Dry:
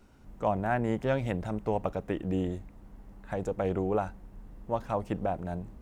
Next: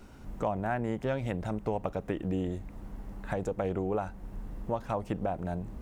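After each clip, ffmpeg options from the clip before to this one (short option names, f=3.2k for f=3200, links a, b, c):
-af "acompressor=threshold=-40dB:ratio=2.5,volume=7.5dB"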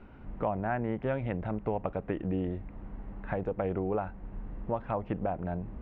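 -af "lowpass=f=2.7k:w=0.5412,lowpass=f=2.7k:w=1.3066"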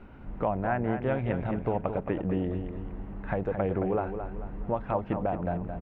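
-af "aecho=1:1:220|440|660|880|1100:0.398|0.167|0.0702|0.0295|0.0124,volume=2.5dB"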